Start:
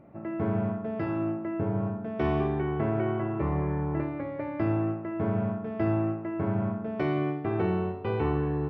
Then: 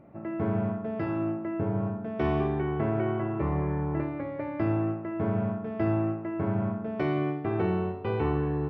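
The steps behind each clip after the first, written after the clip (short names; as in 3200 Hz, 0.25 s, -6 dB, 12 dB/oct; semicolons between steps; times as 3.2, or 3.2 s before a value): nothing audible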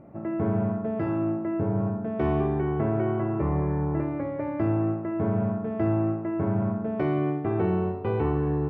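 high shelf 2300 Hz -11.5 dB; in parallel at -3 dB: limiter -26 dBFS, peak gain reduction 10 dB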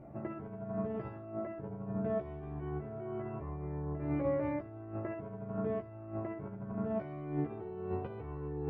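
negative-ratio compressor -30 dBFS, ratio -0.5; chorus voices 6, 0.24 Hz, delay 15 ms, depth 1.6 ms; gain -4.5 dB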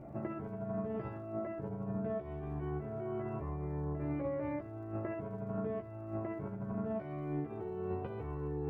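crackle 97/s -68 dBFS; compressor, threshold -36 dBFS, peak gain reduction 8.5 dB; gain +2.5 dB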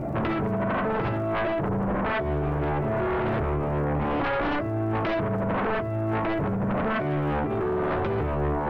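sine folder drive 13 dB, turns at -25 dBFS; gain +2.5 dB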